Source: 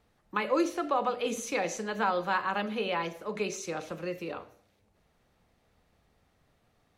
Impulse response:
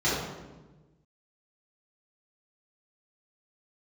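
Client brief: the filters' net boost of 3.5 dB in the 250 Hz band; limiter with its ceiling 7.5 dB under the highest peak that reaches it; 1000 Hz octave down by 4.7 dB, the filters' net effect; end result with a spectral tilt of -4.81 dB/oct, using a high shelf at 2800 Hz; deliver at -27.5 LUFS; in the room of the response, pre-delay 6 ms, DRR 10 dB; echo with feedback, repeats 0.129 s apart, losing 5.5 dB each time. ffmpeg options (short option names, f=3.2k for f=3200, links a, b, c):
-filter_complex "[0:a]equalizer=f=250:t=o:g=5.5,equalizer=f=1k:t=o:g=-5.5,highshelf=f=2.8k:g=-6.5,alimiter=limit=-23dB:level=0:latency=1,aecho=1:1:129|258|387|516|645|774|903:0.531|0.281|0.149|0.079|0.0419|0.0222|0.0118,asplit=2[a][b];[1:a]atrim=start_sample=2205,adelay=6[c];[b][c]afir=irnorm=-1:irlink=0,volume=-24dB[d];[a][d]amix=inputs=2:normalize=0,volume=3.5dB"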